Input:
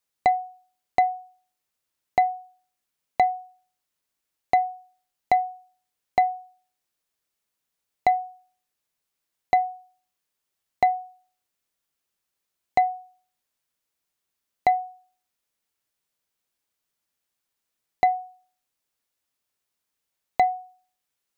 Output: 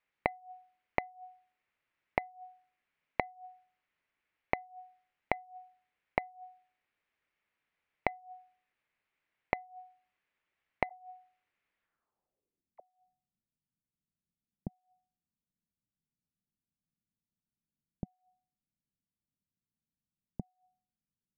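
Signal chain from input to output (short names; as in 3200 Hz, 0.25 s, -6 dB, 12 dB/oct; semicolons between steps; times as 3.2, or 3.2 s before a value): flipped gate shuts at -24 dBFS, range -27 dB; low-pass sweep 2200 Hz -> 190 Hz, 11.8–12.73; 10.89–12.8 dispersion lows, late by 43 ms, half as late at 610 Hz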